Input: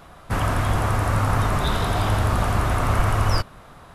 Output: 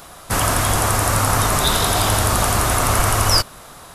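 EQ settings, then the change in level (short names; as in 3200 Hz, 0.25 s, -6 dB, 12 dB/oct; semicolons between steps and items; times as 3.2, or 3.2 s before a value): tone controls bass -5 dB, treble +14 dB; +5.0 dB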